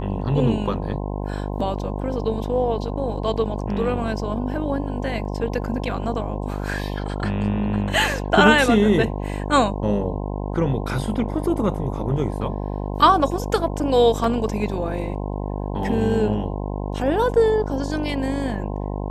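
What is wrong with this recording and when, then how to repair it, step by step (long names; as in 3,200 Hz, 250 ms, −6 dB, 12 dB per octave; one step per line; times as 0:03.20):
mains buzz 50 Hz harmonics 21 −27 dBFS
0:14.24: drop-out 2.5 ms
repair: hum removal 50 Hz, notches 21
repair the gap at 0:14.24, 2.5 ms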